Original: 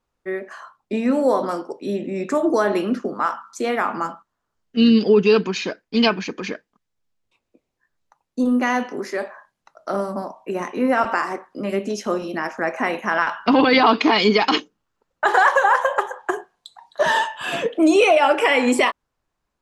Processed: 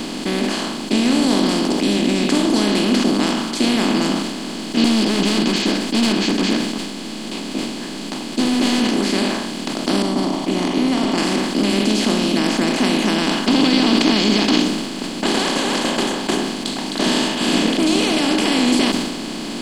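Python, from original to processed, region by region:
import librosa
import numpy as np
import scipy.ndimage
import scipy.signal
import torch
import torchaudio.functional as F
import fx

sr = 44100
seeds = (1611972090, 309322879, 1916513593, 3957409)

y = fx.chain(x, sr, fx.clip_hard(threshold_db=-17.5),
    fx.ensemble(), at=(4.84, 9.13))
y = fx.chain(y, sr, fx.savgol(points=41),
    fx.fixed_phaser(hz=320.0, stages=8), at=(10.02, 11.18))
y = fx.bin_compress(y, sr, power=0.2)
y = fx.band_shelf(y, sr, hz=990.0, db=-14.5, octaves=2.8)
y = fx.sustainer(y, sr, db_per_s=40.0)
y = y * librosa.db_to_amplitude(-3.0)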